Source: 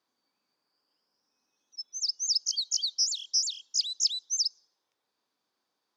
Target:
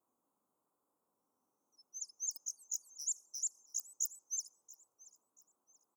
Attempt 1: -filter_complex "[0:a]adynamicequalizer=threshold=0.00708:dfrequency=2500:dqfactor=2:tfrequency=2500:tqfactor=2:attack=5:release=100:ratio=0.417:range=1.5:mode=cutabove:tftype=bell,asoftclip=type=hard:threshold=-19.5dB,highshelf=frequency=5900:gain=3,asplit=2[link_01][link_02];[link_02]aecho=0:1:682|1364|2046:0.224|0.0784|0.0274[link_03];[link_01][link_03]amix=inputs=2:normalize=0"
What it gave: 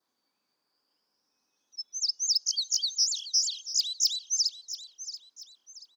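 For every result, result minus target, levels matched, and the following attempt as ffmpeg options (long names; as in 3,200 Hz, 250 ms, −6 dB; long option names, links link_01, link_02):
4,000 Hz band +15.5 dB; echo-to-direct +8 dB
-filter_complex "[0:a]adynamicequalizer=threshold=0.00708:dfrequency=2500:dqfactor=2:tfrequency=2500:tqfactor=2:attack=5:release=100:ratio=0.417:range=1.5:mode=cutabove:tftype=bell,asoftclip=type=hard:threshold=-19.5dB,asuperstop=centerf=3100:order=12:qfactor=0.54,highshelf=frequency=5900:gain=3,asplit=2[link_01][link_02];[link_02]aecho=0:1:682|1364|2046:0.224|0.0784|0.0274[link_03];[link_01][link_03]amix=inputs=2:normalize=0"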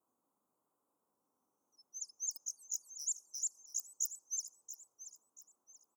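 echo-to-direct +8 dB
-filter_complex "[0:a]adynamicequalizer=threshold=0.00708:dfrequency=2500:dqfactor=2:tfrequency=2500:tqfactor=2:attack=5:release=100:ratio=0.417:range=1.5:mode=cutabove:tftype=bell,asoftclip=type=hard:threshold=-19.5dB,asuperstop=centerf=3100:order=12:qfactor=0.54,highshelf=frequency=5900:gain=3,asplit=2[link_01][link_02];[link_02]aecho=0:1:682|1364|2046:0.0891|0.0312|0.0109[link_03];[link_01][link_03]amix=inputs=2:normalize=0"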